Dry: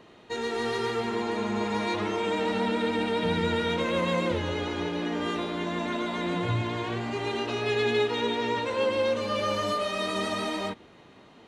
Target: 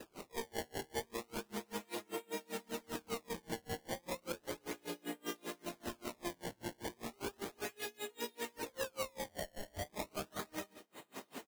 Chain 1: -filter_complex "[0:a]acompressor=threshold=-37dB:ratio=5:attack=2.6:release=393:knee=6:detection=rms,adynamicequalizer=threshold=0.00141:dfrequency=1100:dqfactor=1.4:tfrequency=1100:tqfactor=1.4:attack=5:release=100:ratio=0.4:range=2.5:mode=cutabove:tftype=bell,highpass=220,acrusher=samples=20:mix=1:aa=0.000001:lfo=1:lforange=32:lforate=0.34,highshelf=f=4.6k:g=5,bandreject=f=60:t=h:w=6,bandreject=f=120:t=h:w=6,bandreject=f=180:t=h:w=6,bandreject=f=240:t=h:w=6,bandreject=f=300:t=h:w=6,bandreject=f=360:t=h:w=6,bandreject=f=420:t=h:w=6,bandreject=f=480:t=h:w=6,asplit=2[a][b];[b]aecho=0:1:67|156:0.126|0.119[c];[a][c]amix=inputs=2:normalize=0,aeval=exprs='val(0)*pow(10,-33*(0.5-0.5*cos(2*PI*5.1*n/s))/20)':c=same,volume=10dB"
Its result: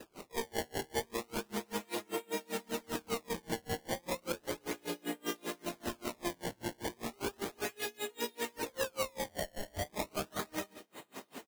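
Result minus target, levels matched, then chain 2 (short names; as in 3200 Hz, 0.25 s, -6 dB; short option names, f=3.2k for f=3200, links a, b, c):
compressor: peak gain reduction -5 dB
-filter_complex "[0:a]acompressor=threshold=-43dB:ratio=5:attack=2.6:release=393:knee=6:detection=rms,adynamicequalizer=threshold=0.00141:dfrequency=1100:dqfactor=1.4:tfrequency=1100:tqfactor=1.4:attack=5:release=100:ratio=0.4:range=2.5:mode=cutabove:tftype=bell,highpass=220,acrusher=samples=20:mix=1:aa=0.000001:lfo=1:lforange=32:lforate=0.34,highshelf=f=4.6k:g=5,bandreject=f=60:t=h:w=6,bandreject=f=120:t=h:w=6,bandreject=f=180:t=h:w=6,bandreject=f=240:t=h:w=6,bandreject=f=300:t=h:w=6,bandreject=f=360:t=h:w=6,bandreject=f=420:t=h:w=6,bandreject=f=480:t=h:w=6,asplit=2[a][b];[b]aecho=0:1:67|156:0.126|0.119[c];[a][c]amix=inputs=2:normalize=0,aeval=exprs='val(0)*pow(10,-33*(0.5-0.5*cos(2*PI*5.1*n/s))/20)':c=same,volume=10dB"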